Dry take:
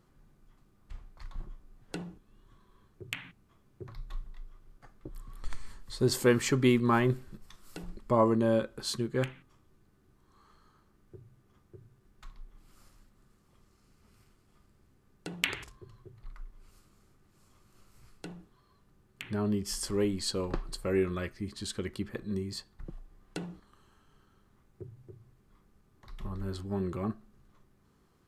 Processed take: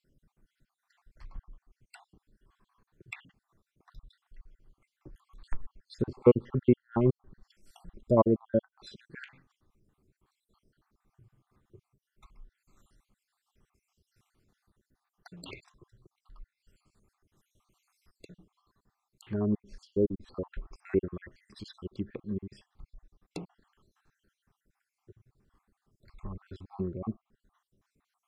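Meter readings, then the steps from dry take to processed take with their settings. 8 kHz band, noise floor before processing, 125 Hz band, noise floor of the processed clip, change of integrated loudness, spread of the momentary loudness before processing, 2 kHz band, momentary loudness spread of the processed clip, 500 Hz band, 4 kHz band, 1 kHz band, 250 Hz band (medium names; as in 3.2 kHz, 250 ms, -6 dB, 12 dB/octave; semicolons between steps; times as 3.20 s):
under -20 dB, -67 dBFS, -1.0 dB, under -85 dBFS, +1.0 dB, 24 LU, -12.0 dB, 24 LU, +1.0 dB, -16.0 dB, -4.5 dB, -0.5 dB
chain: random holes in the spectrogram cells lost 60%; low-pass that closes with the level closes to 950 Hz, closed at -31.5 dBFS; upward expansion 1.5:1, over -40 dBFS; trim +6.5 dB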